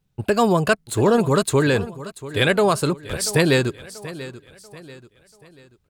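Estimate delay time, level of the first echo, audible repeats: 0.687 s, -16.0 dB, 3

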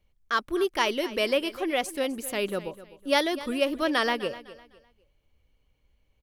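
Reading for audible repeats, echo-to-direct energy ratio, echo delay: 2, -16.0 dB, 0.253 s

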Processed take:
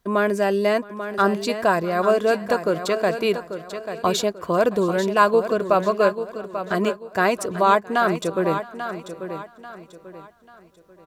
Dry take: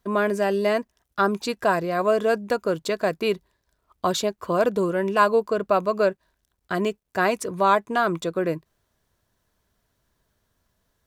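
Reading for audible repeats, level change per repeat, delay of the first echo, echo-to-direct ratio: 6, no steady repeat, 0.668 s, -9.5 dB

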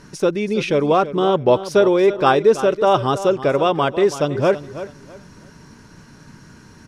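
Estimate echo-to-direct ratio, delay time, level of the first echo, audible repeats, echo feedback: -13.0 dB, 0.327 s, -13.5 dB, 2, 26%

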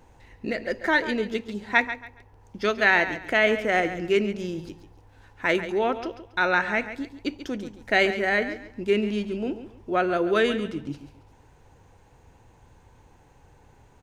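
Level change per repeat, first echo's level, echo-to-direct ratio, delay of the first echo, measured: -11.5 dB, -12.0 dB, -11.5 dB, 0.139 s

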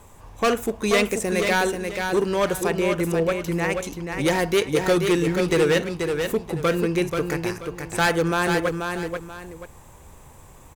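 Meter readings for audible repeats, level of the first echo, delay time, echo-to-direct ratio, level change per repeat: 2, -5.5 dB, 0.484 s, -5.0 dB, -10.5 dB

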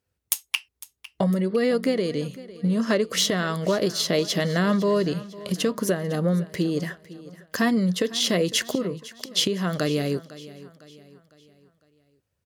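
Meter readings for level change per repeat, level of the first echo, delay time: -7.0 dB, -18.0 dB, 0.504 s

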